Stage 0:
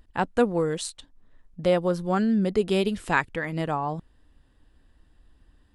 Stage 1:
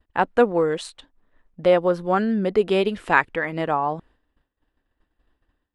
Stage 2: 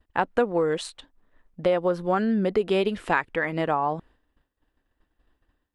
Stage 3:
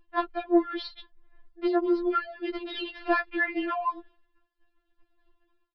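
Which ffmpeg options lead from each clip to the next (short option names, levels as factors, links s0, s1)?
-af "agate=range=0.0224:threshold=0.00447:ratio=3:detection=peak,bass=f=250:g=-10,treble=f=4000:g=-13,volume=2"
-af "acompressor=threshold=0.112:ratio=4"
-af "asoftclip=type=tanh:threshold=0.266,aresample=11025,aresample=44100,afftfilt=real='re*4*eq(mod(b,16),0)':imag='im*4*eq(mod(b,16),0)':win_size=2048:overlap=0.75,volume=1.26"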